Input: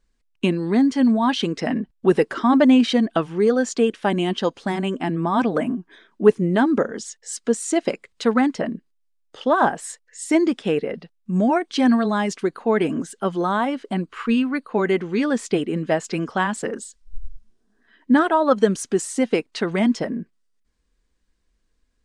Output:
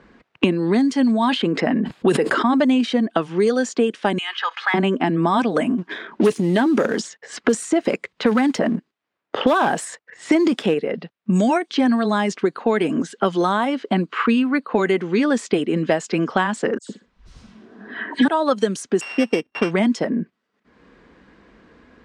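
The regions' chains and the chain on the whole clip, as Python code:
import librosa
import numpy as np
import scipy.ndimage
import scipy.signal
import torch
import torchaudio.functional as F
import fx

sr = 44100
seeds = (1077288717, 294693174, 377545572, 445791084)

y = fx.chain(x, sr, fx.notch(hz=5800.0, q=5.6),
    fx.sustainer(db_per_s=41.0), at=(1.28, 2.6))
y = fx.chain(y, sr, fx.highpass(hz=1300.0, slope=24),
    fx.comb(ms=2.4, depth=0.47),
    fx.env_flatten(amount_pct=50), at=(4.18, 4.74))
y = fx.chain(y, sr, fx.transient(attack_db=-1, sustain_db=8),
    fx.leveller(passes=1), at=(5.78, 10.74))
y = fx.chain(y, sr, fx.high_shelf(hz=7500.0, db=-6.0),
    fx.dispersion(late='lows', ms=112.0, hz=2600.0),
    fx.room_flutter(wall_m=10.5, rt60_s=0.24), at=(16.78, 18.28))
y = fx.chain(y, sr, fx.sample_sort(block=16),
    fx.lowpass(hz=5100.0, slope=12), at=(19.01, 19.71))
y = fx.env_lowpass(y, sr, base_hz=1800.0, full_db=-15.5)
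y = scipy.signal.sosfilt(scipy.signal.butter(2, 150.0, 'highpass', fs=sr, output='sos'), y)
y = fx.band_squash(y, sr, depth_pct=100)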